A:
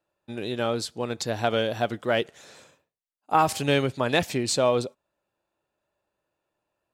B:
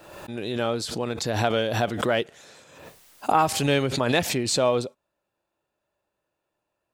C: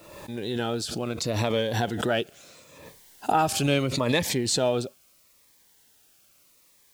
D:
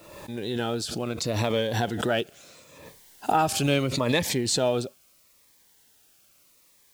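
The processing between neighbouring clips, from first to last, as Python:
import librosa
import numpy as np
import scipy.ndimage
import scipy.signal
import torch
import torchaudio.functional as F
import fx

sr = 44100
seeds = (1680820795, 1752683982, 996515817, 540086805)

y1 = fx.pre_swell(x, sr, db_per_s=52.0)
y2 = fx.quant_dither(y1, sr, seeds[0], bits=10, dither='triangular')
y2 = fx.notch_cascade(y2, sr, direction='falling', hz=0.76)
y3 = fx.block_float(y2, sr, bits=7)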